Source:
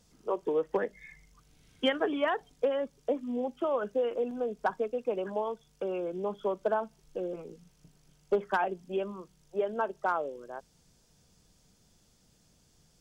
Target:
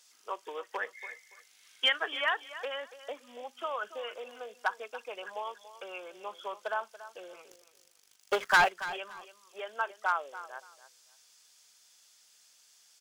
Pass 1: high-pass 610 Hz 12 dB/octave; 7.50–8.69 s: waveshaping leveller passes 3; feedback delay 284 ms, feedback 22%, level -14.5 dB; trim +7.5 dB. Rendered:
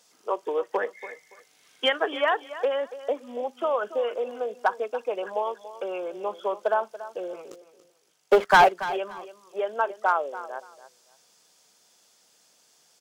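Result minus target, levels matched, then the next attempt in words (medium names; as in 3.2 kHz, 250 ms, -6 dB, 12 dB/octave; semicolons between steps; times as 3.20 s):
500 Hz band +6.0 dB
high-pass 1.5 kHz 12 dB/octave; 7.50–8.69 s: waveshaping leveller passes 3; feedback delay 284 ms, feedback 22%, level -14.5 dB; trim +7.5 dB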